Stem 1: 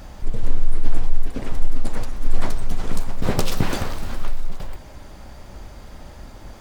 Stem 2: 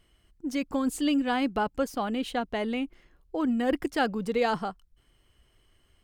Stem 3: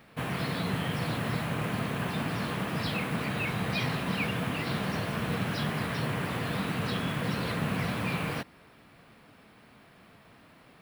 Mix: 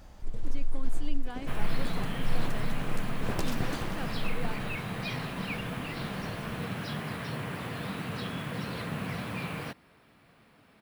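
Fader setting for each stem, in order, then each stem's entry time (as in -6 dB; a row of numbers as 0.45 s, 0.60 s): -12.0 dB, -15.5 dB, -4.5 dB; 0.00 s, 0.00 s, 1.30 s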